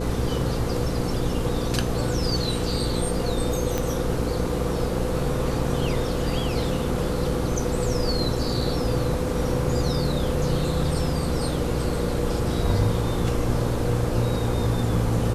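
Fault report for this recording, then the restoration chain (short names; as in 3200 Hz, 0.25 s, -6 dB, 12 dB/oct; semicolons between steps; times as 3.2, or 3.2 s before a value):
hum 60 Hz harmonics 8 -28 dBFS
3.78 pop -11 dBFS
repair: de-click; de-hum 60 Hz, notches 8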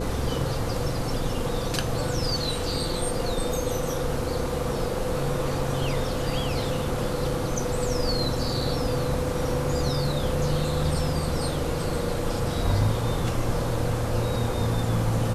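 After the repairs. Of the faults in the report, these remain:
3.78 pop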